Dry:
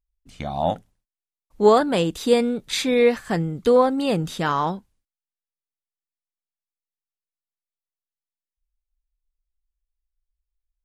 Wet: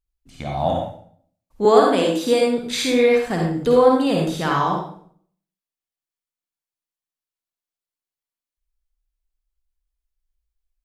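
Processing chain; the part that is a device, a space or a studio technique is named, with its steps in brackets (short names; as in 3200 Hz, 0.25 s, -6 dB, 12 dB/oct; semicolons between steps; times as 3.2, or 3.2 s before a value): bathroom (reverb RT60 0.55 s, pre-delay 47 ms, DRR -0.5 dB); 1.65–2.58 steep high-pass 180 Hz; gain -1 dB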